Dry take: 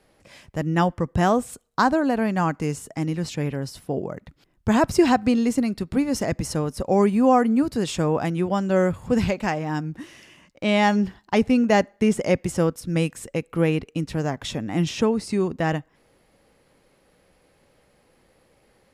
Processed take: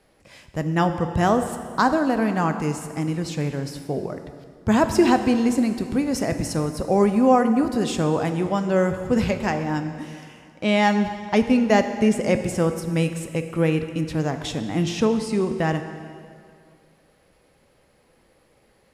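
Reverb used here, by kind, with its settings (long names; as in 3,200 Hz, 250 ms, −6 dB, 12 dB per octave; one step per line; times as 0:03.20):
dense smooth reverb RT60 2.3 s, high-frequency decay 0.85×, DRR 7.5 dB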